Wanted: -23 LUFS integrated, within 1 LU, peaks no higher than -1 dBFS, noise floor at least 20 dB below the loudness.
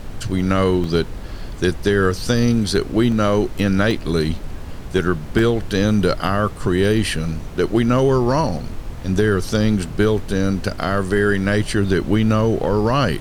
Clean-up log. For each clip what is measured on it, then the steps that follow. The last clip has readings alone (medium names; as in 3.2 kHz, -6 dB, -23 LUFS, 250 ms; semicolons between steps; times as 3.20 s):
dropouts 4; longest dropout 1.2 ms; noise floor -32 dBFS; noise floor target -39 dBFS; loudness -19.0 LUFS; peak level -2.5 dBFS; loudness target -23.0 LUFS
-> interpolate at 0.84/3.12/3.91/5.39 s, 1.2 ms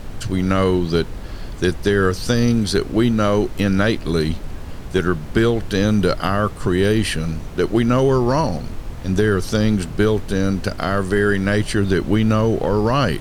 dropouts 0; noise floor -32 dBFS; noise floor target -39 dBFS
-> noise print and reduce 7 dB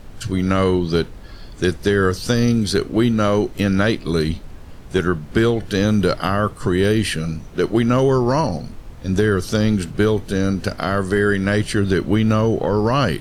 noise floor -38 dBFS; noise floor target -39 dBFS
-> noise print and reduce 6 dB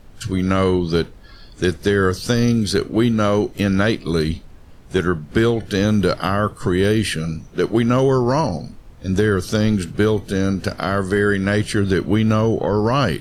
noise floor -43 dBFS; loudness -19.0 LUFS; peak level -3.0 dBFS; loudness target -23.0 LUFS
-> trim -4 dB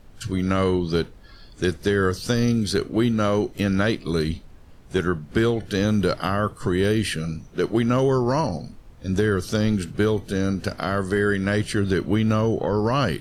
loudness -23.0 LUFS; peak level -7.0 dBFS; noise floor -47 dBFS